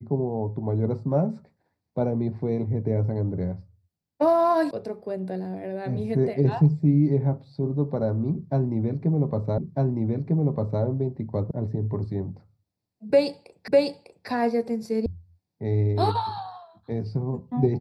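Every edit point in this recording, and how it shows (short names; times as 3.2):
4.71 sound cut off
9.58 repeat of the last 1.25 s
11.51 sound cut off
13.68 repeat of the last 0.6 s
15.06 sound cut off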